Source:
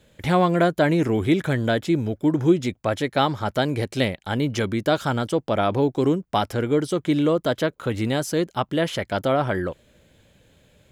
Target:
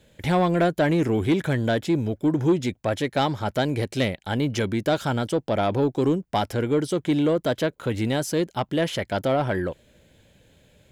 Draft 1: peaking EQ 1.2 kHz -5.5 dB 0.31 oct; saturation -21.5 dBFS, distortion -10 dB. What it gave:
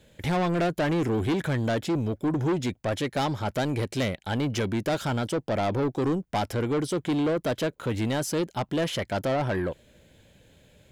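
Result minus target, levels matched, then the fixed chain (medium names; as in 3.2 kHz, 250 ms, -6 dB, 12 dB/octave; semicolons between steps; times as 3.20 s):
saturation: distortion +10 dB
peaking EQ 1.2 kHz -5.5 dB 0.31 oct; saturation -12.5 dBFS, distortion -19 dB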